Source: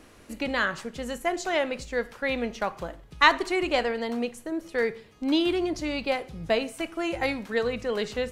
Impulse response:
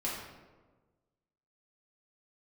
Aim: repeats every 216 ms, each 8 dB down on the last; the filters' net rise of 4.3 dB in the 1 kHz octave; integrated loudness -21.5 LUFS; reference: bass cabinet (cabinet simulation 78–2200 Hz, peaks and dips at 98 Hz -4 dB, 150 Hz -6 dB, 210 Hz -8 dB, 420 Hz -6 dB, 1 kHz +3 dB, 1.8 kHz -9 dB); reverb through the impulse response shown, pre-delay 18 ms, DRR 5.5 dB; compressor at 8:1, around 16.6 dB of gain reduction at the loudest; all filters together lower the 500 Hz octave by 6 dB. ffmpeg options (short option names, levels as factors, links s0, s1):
-filter_complex "[0:a]equalizer=f=500:t=o:g=-7,equalizer=f=1000:t=o:g=6,acompressor=threshold=0.0447:ratio=8,aecho=1:1:216|432|648|864|1080:0.398|0.159|0.0637|0.0255|0.0102,asplit=2[s0][s1];[1:a]atrim=start_sample=2205,adelay=18[s2];[s1][s2]afir=irnorm=-1:irlink=0,volume=0.316[s3];[s0][s3]amix=inputs=2:normalize=0,highpass=f=78:w=0.5412,highpass=f=78:w=1.3066,equalizer=f=98:t=q:w=4:g=-4,equalizer=f=150:t=q:w=4:g=-6,equalizer=f=210:t=q:w=4:g=-8,equalizer=f=420:t=q:w=4:g=-6,equalizer=f=1000:t=q:w=4:g=3,equalizer=f=1800:t=q:w=4:g=-9,lowpass=f=2200:w=0.5412,lowpass=f=2200:w=1.3066,volume=4.22"